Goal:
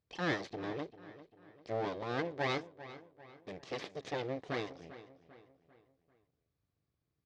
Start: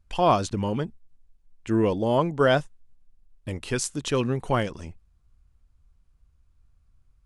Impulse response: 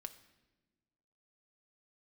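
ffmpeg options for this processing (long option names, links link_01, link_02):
-filter_complex "[0:a]aeval=exprs='abs(val(0))':channel_layout=same,highpass=170,equalizer=frequency=220:width_type=q:width=4:gain=-8,equalizer=frequency=440:width_type=q:width=4:gain=3,equalizer=frequency=950:width_type=q:width=4:gain=-6,equalizer=frequency=1400:width_type=q:width=4:gain=-8,equalizer=frequency=2800:width_type=q:width=4:gain=-5,lowpass=frequency=5200:width=0.5412,lowpass=frequency=5200:width=1.3066,asplit=2[link_01][link_02];[link_02]adelay=395,lowpass=frequency=3900:poles=1,volume=-15dB,asplit=2[link_03][link_04];[link_04]adelay=395,lowpass=frequency=3900:poles=1,volume=0.46,asplit=2[link_05][link_06];[link_06]adelay=395,lowpass=frequency=3900:poles=1,volume=0.46,asplit=2[link_07][link_08];[link_08]adelay=395,lowpass=frequency=3900:poles=1,volume=0.46[link_09];[link_03][link_05][link_07][link_09]amix=inputs=4:normalize=0[link_10];[link_01][link_10]amix=inputs=2:normalize=0,volume=-7dB"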